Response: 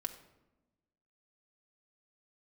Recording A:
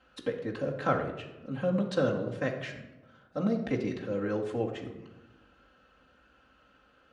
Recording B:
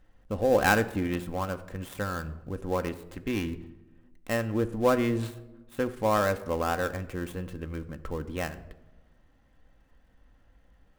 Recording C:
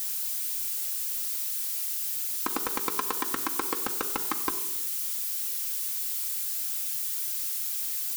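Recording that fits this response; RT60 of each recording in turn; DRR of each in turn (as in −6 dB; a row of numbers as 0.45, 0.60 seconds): C; 1.0, 1.1, 1.0 seconds; −4.5, 8.0, 3.5 decibels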